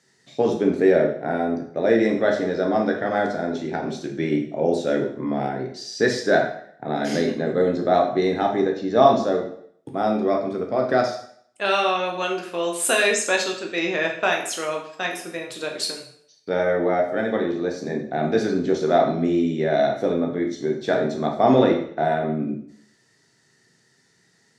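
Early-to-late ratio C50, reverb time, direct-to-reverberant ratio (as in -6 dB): 7.0 dB, 0.60 s, 0.5 dB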